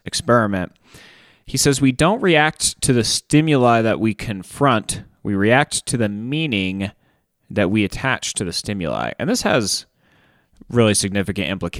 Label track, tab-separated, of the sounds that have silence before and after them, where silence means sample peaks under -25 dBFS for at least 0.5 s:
1.490000	6.890000	sound
7.510000	9.800000	sound